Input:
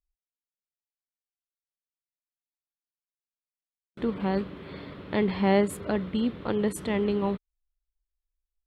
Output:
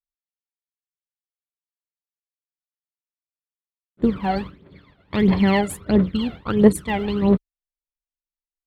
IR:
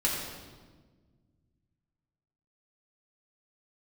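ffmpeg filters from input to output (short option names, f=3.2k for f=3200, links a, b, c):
-af "agate=range=-33dB:threshold=-29dB:ratio=3:detection=peak,aphaser=in_gain=1:out_gain=1:delay=1.5:decay=0.74:speed=1.5:type=triangular,volume=4dB"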